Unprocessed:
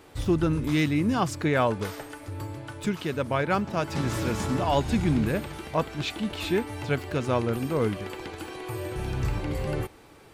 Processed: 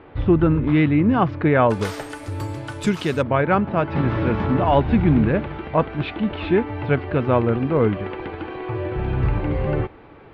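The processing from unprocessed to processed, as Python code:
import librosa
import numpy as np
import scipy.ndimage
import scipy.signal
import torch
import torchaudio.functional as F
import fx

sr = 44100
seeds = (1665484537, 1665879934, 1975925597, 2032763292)

y = fx.bessel_lowpass(x, sr, hz=fx.steps((0.0, 1900.0), (1.69, 9600.0), (3.21, 2000.0)), order=6)
y = y * librosa.db_to_amplitude(7.5)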